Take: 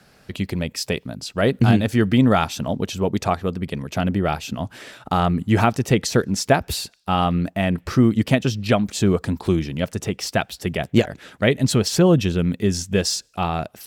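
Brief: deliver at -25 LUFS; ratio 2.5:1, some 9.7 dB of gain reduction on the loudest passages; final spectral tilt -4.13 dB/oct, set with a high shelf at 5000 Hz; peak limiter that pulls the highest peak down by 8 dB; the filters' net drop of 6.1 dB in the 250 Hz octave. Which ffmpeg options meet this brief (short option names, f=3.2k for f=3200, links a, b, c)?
-af "equalizer=f=250:t=o:g=-8.5,highshelf=f=5k:g=7,acompressor=threshold=-28dB:ratio=2.5,volume=6.5dB,alimiter=limit=-13.5dB:level=0:latency=1"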